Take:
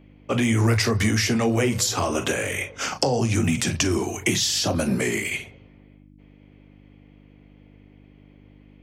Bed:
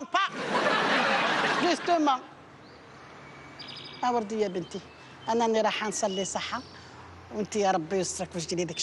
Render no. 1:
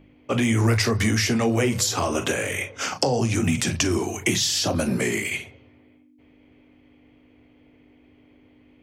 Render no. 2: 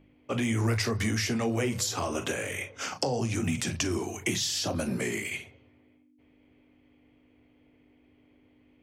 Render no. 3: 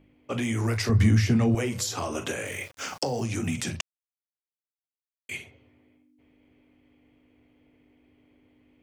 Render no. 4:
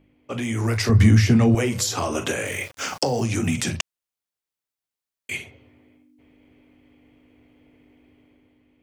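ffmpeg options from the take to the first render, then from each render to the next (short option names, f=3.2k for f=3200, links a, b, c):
-af "bandreject=f=50:t=h:w=4,bandreject=f=100:t=h:w=4,bandreject=f=150:t=h:w=4,bandreject=f=200:t=h:w=4"
-af "volume=-7dB"
-filter_complex "[0:a]asettb=1/sr,asplit=3[a][b][c];[a]atrim=end=0.894[d];[b]atrim=start=0.89:end=1.55,asetpts=PTS-STARTPTS,afade=t=in:d=0.004:c=qsin,afade=t=out:st=0.656:d=0.004:c=qsin,bass=f=250:g=13,treble=f=4k:g=-5[e];[c]atrim=start=1.546[f];[d][e]acrossfade=d=0.004:c1=hsin:c2=qsin[g];[g][f]acrossfade=d=0.004:c1=qsin:c2=hsin,asettb=1/sr,asplit=3[h][i][j];[h]atrim=end=2.464[k];[i]atrim=start=2.46:end=3.25,asetpts=PTS-STARTPTS,afade=t=in:d=0.004:c=qsin,afade=t=out:st=0.786:d=0.004:c=qsin,aeval=exprs='val(0)*gte(abs(val(0)),0.00562)':c=same[l];[j]atrim=start=3.246[m];[k][l]acrossfade=d=0.004:c1=hsin:c2=qsin[n];[n][m]acrossfade=d=0.004:c1=qsin:c2=hsin,asplit=3[o][p][q];[o]atrim=end=3.81,asetpts=PTS-STARTPTS,afade=t=out:st=3.806:d=0.004:c=hsin[r];[p]atrim=start=3.81:end=5.29,asetpts=PTS-STARTPTS,volume=0[s];[q]atrim=start=5.29,asetpts=PTS-STARTPTS,afade=t=in:d=0.004:c=hsin[t];[r][s][t]concat=n=3:v=0:a=1"
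-af "dynaudnorm=f=100:g=13:m=6dB"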